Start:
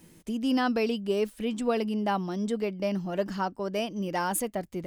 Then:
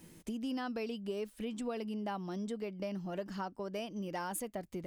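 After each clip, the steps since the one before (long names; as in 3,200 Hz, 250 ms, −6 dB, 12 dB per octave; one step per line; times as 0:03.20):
downward compressor 3 to 1, threshold −37 dBFS, peak gain reduction 11.5 dB
level −1.5 dB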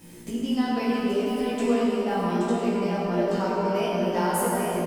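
double-tracking delay 17 ms −2 dB
single-tap delay 825 ms −6 dB
dense smooth reverb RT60 3.9 s, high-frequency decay 0.45×, DRR −6 dB
level +4.5 dB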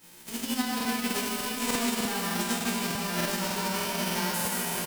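spectral envelope flattened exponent 0.3
loudspeakers that aren't time-aligned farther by 54 metres −10 dB, 78 metres −11 dB
regular buffer underruns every 0.30 s, samples 2,048, repeat, from 0:00.76
level −6 dB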